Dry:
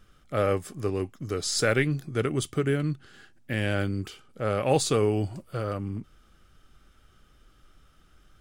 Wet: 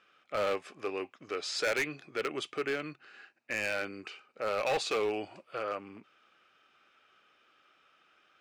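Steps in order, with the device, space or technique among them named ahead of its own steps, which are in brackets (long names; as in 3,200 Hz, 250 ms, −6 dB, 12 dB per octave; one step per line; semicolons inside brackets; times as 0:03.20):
megaphone (band-pass filter 540–3,700 Hz; parametric band 2,500 Hz +10.5 dB 0.21 octaves; hard clipping −25.5 dBFS, distortion −9 dB)
0:02.89–0:04.48: notch filter 3,300 Hz, Q 5.3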